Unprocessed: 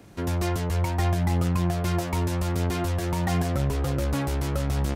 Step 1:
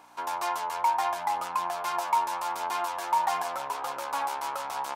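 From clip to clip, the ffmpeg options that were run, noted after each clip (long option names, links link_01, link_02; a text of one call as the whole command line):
ffmpeg -i in.wav -af "aeval=exprs='val(0)+0.02*(sin(2*PI*60*n/s)+sin(2*PI*2*60*n/s)/2+sin(2*PI*3*60*n/s)/3+sin(2*PI*4*60*n/s)/4+sin(2*PI*5*60*n/s)/5)':channel_layout=same,highpass=frequency=920:width_type=q:width=5.3,bandreject=frequency=1900:width=14,volume=-2.5dB" out.wav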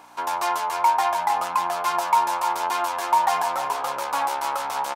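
ffmpeg -i in.wav -af "aecho=1:1:305:0.299,volume=6dB" out.wav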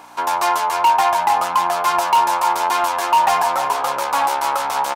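ffmpeg -i in.wav -af "asoftclip=type=hard:threshold=-16dB,volume=6.5dB" out.wav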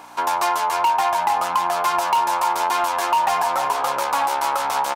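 ffmpeg -i in.wav -af "acompressor=threshold=-17dB:ratio=3" out.wav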